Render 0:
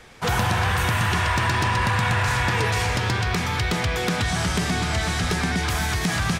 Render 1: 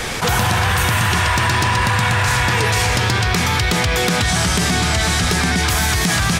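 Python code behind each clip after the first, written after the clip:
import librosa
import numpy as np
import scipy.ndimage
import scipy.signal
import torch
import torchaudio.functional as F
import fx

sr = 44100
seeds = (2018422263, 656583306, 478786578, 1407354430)

y = fx.high_shelf(x, sr, hz=4200.0, db=6.5)
y = fx.env_flatten(y, sr, amount_pct=70)
y = y * 10.0 ** (3.5 / 20.0)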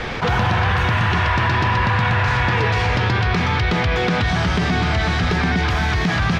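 y = fx.air_absorb(x, sr, metres=250.0)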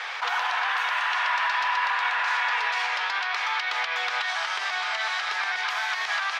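y = scipy.signal.sosfilt(scipy.signal.butter(4, 830.0, 'highpass', fs=sr, output='sos'), x)
y = y * 10.0 ** (-3.5 / 20.0)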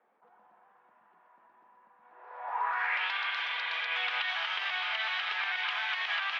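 y = fx.spec_repair(x, sr, seeds[0], start_s=3.2, length_s=0.65, low_hz=360.0, high_hz=3400.0, source='both')
y = fx.filter_sweep_lowpass(y, sr, from_hz=210.0, to_hz=3000.0, start_s=1.99, end_s=3.07, q=2.8)
y = y * 10.0 ** (-8.5 / 20.0)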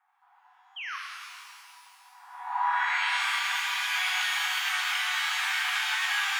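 y = fx.brickwall_highpass(x, sr, low_hz=720.0)
y = fx.spec_paint(y, sr, seeds[1], shape='fall', start_s=0.76, length_s=0.21, low_hz=1000.0, high_hz=3300.0, level_db=-38.0)
y = fx.rev_shimmer(y, sr, seeds[2], rt60_s=2.3, semitones=12, shimmer_db=-8, drr_db=-1.5)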